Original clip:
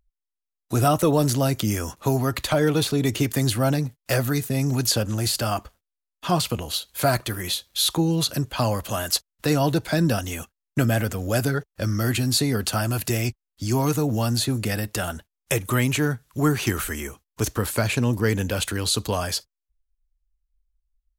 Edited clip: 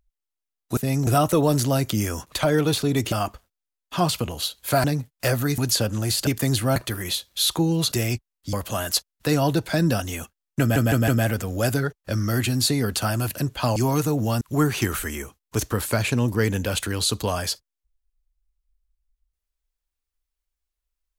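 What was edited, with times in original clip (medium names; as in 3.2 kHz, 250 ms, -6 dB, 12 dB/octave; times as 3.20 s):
2.02–2.41 s: delete
3.21–3.70 s: swap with 5.43–7.15 s
4.44–4.74 s: move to 0.77 s
8.31–8.72 s: swap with 13.06–13.67 s
10.79 s: stutter 0.16 s, 4 plays
14.32–16.26 s: delete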